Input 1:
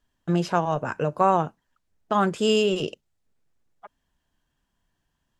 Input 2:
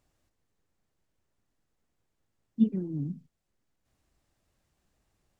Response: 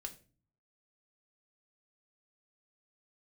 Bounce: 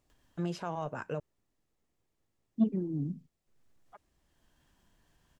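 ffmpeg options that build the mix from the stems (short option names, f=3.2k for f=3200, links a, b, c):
-filter_complex "[0:a]alimiter=limit=-14.5dB:level=0:latency=1:release=22,acompressor=mode=upward:threshold=-45dB:ratio=2.5,adelay=100,volume=-10dB,asplit=3[a][b][c];[a]atrim=end=1.2,asetpts=PTS-STARTPTS,afade=t=out:st=1.196:d=0.004:c=hsin[d];[b]atrim=start=1.2:end=3.47,asetpts=PTS-STARTPTS,volume=0[e];[c]atrim=start=3.47,asetpts=PTS-STARTPTS,afade=t=in:d=0.004:c=hsin[f];[d][e][f]concat=n=3:v=0:a=1[g];[1:a]equalizer=f=360:t=o:w=0.77:g=3,bandreject=f=1.5k:w=11,volume=-1.5dB[h];[g][h]amix=inputs=2:normalize=0,asoftclip=type=tanh:threshold=-17.5dB"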